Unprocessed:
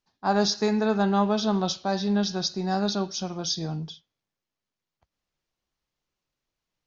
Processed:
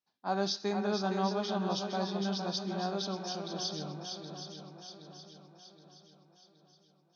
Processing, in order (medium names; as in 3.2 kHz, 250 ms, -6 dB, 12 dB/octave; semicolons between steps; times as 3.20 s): high-pass 180 Hz 12 dB/octave; shuffle delay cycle 740 ms, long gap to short 1.5:1, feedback 46%, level -6.5 dB; speed mistake 25 fps video run at 24 fps; trim -8.5 dB